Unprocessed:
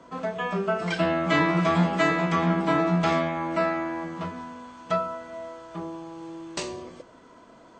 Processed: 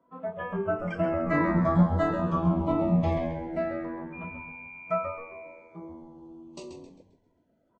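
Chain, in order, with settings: 4.12–5.87 whine 2400 Hz -34 dBFS; LFO notch saw down 0.26 Hz 990–6100 Hz; frequency-shifting echo 0.133 s, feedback 48%, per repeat -89 Hz, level -6 dB; spectral expander 1.5:1; gain -2 dB

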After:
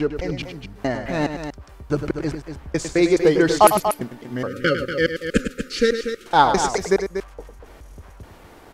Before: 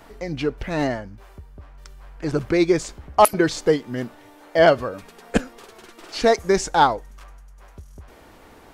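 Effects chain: slices in reverse order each 0.211 s, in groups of 3; loudspeakers at several distances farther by 35 m -9 dB, 82 m -9 dB; spectral delete 4.47–6.26, 570–1200 Hz; gain +1 dB

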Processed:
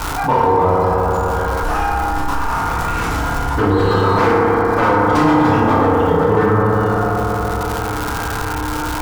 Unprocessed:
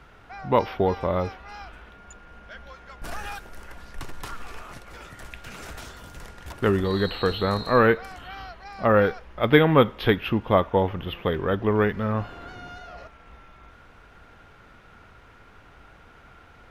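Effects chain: tracing distortion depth 0.091 ms; time stretch by phase-locked vocoder 0.54×; low shelf 77 Hz +8 dB; flutter echo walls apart 5.1 m, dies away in 0.3 s; wavefolder -14.5 dBFS; FDN reverb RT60 2.5 s, low-frequency decay 1×, high-frequency decay 0.3×, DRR -9 dB; crackle 420/s -28 dBFS; EQ curve 620 Hz 0 dB, 950 Hz +9 dB, 1900 Hz -2 dB; fast leveller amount 70%; gain -7 dB

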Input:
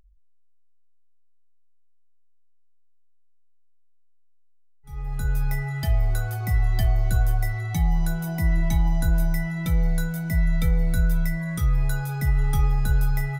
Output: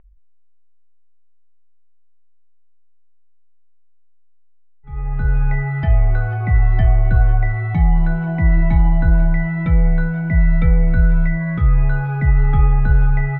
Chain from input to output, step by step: inverse Chebyshev low-pass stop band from 9100 Hz, stop band 70 dB; gain +7.5 dB

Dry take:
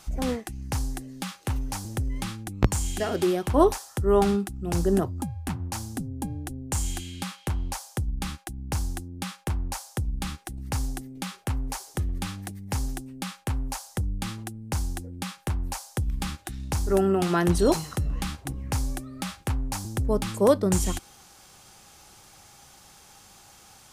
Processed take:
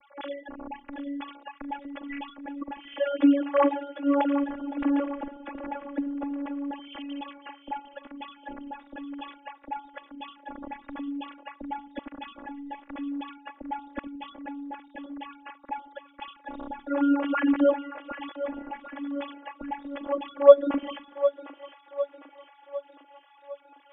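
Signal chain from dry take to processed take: sine-wave speech; robotiser 283 Hz; split-band echo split 350 Hz, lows 84 ms, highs 0.755 s, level -11 dB; gain +2 dB

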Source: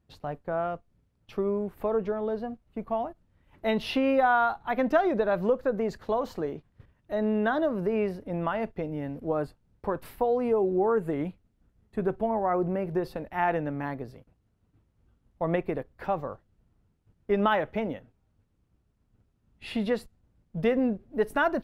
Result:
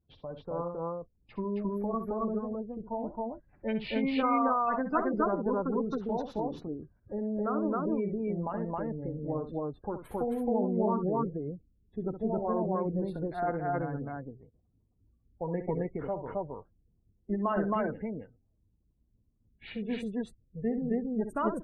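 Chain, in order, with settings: spectral gate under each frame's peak -25 dB strong; formant shift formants -3 st; loudspeakers at several distances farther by 22 m -10 dB, 92 m 0 dB; gain -6 dB

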